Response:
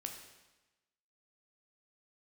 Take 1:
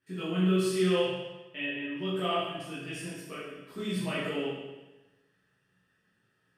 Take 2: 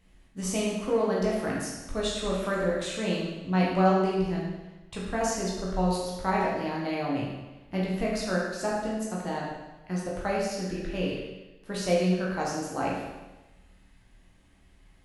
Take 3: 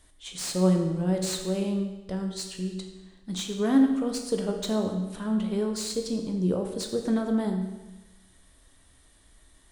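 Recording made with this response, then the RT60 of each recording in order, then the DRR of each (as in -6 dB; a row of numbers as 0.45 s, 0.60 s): 3; 1.1 s, 1.1 s, 1.1 s; -10.5 dB, -5.0 dB, 3.0 dB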